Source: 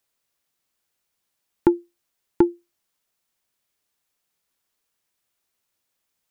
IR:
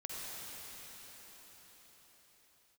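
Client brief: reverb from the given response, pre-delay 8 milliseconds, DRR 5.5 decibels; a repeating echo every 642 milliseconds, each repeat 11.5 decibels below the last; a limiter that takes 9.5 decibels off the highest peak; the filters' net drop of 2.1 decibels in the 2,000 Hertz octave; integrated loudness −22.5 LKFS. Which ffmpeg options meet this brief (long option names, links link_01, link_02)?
-filter_complex "[0:a]equalizer=frequency=2000:width_type=o:gain=-3,alimiter=limit=-13.5dB:level=0:latency=1,aecho=1:1:642|1284|1926:0.266|0.0718|0.0194,asplit=2[link_01][link_02];[1:a]atrim=start_sample=2205,adelay=8[link_03];[link_02][link_03]afir=irnorm=-1:irlink=0,volume=-6.5dB[link_04];[link_01][link_04]amix=inputs=2:normalize=0,volume=9dB"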